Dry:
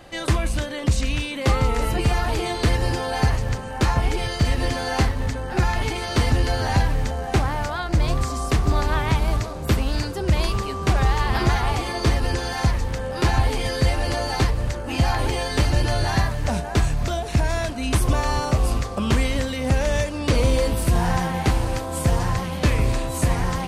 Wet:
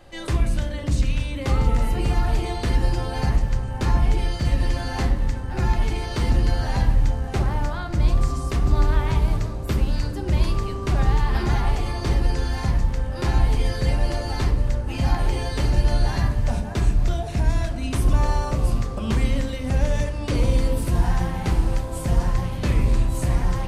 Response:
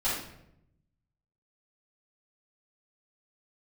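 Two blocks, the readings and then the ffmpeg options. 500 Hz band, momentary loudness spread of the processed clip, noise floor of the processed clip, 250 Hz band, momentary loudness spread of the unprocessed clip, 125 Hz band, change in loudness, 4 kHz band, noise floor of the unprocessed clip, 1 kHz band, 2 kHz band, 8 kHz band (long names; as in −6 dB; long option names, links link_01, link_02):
−4.5 dB, 4 LU, −30 dBFS, −2.0 dB, 4 LU, −0.5 dB, −1.0 dB, −6.0 dB, −30 dBFS, −5.0 dB, −6.0 dB, −6.5 dB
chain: -filter_complex "[0:a]asplit=2[link_01][link_02];[1:a]atrim=start_sample=2205,lowshelf=frequency=470:gain=12[link_03];[link_02][link_03]afir=irnorm=-1:irlink=0,volume=-16dB[link_04];[link_01][link_04]amix=inputs=2:normalize=0,volume=-7.5dB"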